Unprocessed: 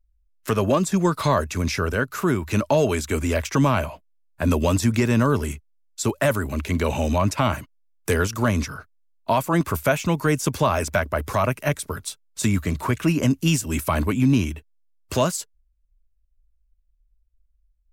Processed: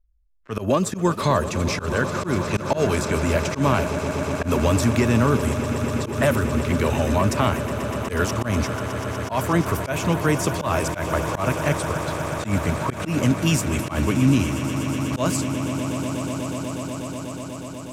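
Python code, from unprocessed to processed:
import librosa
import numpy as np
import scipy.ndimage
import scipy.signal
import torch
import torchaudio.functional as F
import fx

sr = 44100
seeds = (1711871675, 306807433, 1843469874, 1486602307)

y = fx.env_lowpass(x, sr, base_hz=1300.0, full_db=-18.5)
y = fx.echo_swell(y, sr, ms=122, loudest=8, wet_db=-14.5)
y = fx.auto_swell(y, sr, attack_ms=103.0)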